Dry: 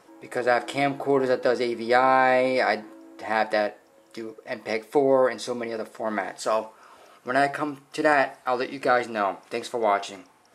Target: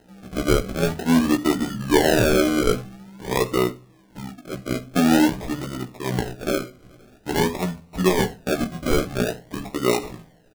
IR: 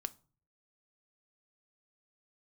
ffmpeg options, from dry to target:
-filter_complex "[0:a]asetrate=26222,aresample=44100,atempo=1.68179,acrusher=samples=38:mix=1:aa=0.000001:lfo=1:lforange=22.8:lforate=0.48,asplit=2[a][b];[1:a]atrim=start_sample=2205,lowshelf=f=210:g=10.5,adelay=16[c];[b][c]afir=irnorm=-1:irlink=0,volume=-4dB[d];[a][d]amix=inputs=2:normalize=0"

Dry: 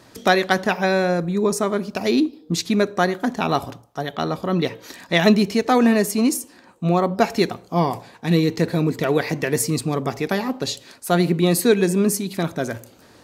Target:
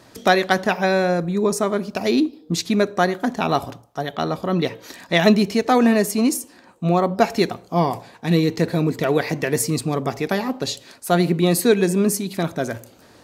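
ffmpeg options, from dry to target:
-af "equalizer=f=660:t=o:w=0.44:g=2"

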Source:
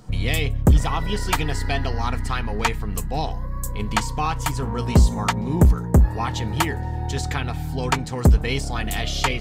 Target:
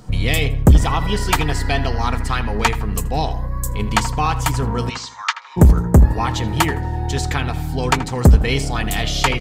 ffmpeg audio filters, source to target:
-filter_complex "[0:a]asplit=3[a][b][c];[a]afade=t=out:st=4.89:d=0.02[d];[b]asuperpass=centerf=2700:order=8:qfactor=0.52,afade=t=in:st=4.89:d=0.02,afade=t=out:st=5.56:d=0.02[e];[c]afade=t=in:st=5.56:d=0.02[f];[d][e][f]amix=inputs=3:normalize=0,asplit=2[g][h];[h]adelay=80,lowpass=f=2k:p=1,volume=-12dB,asplit=2[i][j];[j]adelay=80,lowpass=f=2k:p=1,volume=0.4,asplit=2[k][l];[l]adelay=80,lowpass=f=2k:p=1,volume=0.4,asplit=2[m][n];[n]adelay=80,lowpass=f=2k:p=1,volume=0.4[o];[g][i][k][m][o]amix=inputs=5:normalize=0,volume=4.5dB"

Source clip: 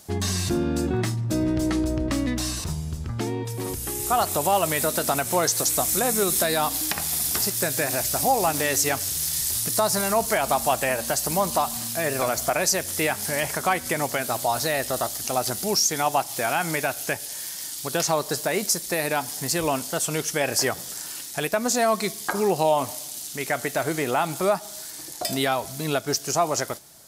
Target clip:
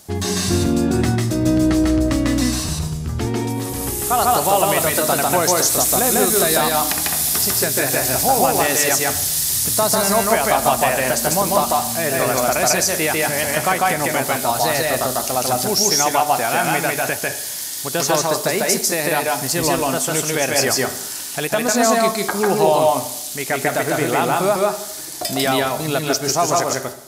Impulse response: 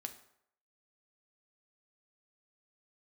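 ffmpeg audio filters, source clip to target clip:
-filter_complex "[0:a]asplit=2[a][b];[1:a]atrim=start_sample=2205,adelay=147[c];[b][c]afir=irnorm=-1:irlink=0,volume=3dB[d];[a][d]amix=inputs=2:normalize=0,volume=3.5dB"

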